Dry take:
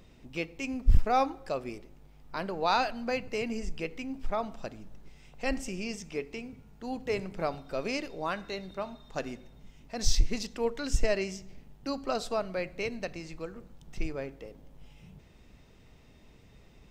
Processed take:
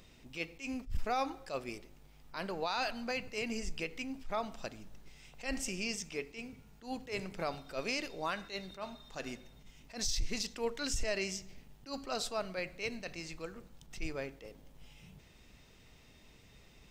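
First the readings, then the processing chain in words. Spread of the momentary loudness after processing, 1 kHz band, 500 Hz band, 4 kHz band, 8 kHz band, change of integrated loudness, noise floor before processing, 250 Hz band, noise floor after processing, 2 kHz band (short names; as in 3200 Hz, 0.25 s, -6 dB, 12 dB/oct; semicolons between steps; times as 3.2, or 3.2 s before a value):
18 LU, -7.0 dB, -6.5 dB, -1.0 dB, -0.5 dB, -5.5 dB, -57 dBFS, -5.5 dB, -60 dBFS, -2.5 dB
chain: tilt shelf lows -4.5 dB, about 1500 Hz; limiter -24.5 dBFS, peak gain reduction 11.5 dB; attack slew limiter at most 200 dB/s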